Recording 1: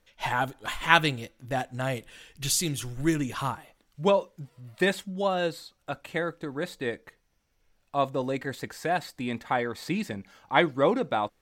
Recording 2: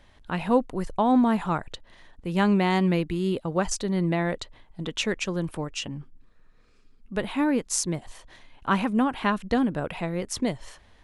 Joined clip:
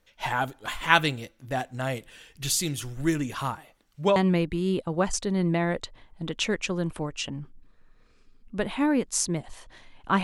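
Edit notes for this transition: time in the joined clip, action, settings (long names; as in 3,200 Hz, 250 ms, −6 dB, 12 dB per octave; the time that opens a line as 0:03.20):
recording 1
0:04.16: continue with recording 2 from 0:02.74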